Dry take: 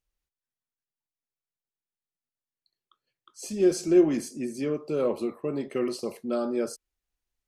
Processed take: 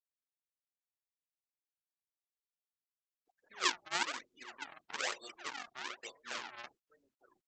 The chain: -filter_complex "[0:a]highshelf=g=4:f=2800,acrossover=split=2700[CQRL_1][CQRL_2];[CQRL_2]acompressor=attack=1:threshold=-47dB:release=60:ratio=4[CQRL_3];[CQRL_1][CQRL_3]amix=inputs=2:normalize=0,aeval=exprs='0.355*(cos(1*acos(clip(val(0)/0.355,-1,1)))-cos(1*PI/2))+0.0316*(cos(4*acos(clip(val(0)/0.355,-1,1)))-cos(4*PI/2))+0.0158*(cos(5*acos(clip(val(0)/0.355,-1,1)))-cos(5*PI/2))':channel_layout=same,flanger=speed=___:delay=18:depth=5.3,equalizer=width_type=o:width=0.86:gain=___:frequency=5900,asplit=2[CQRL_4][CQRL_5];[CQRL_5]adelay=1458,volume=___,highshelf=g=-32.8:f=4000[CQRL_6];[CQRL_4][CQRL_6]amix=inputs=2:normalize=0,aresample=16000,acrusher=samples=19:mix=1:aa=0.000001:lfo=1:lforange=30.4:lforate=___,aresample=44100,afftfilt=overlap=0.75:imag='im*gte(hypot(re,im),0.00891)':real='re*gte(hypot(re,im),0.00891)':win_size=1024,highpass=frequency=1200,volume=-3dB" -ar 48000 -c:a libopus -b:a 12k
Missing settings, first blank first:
0.36, -3.5, -19dB, 1.1